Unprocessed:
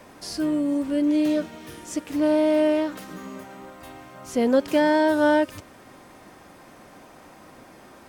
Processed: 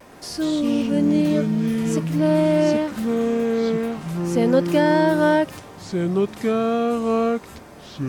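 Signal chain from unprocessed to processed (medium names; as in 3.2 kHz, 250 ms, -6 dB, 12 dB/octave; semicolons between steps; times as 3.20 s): vibrato 0.61 Hz 26 cents; ever faster or slower copies 114 ms, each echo -5 st, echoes 2; trim +1.5 dB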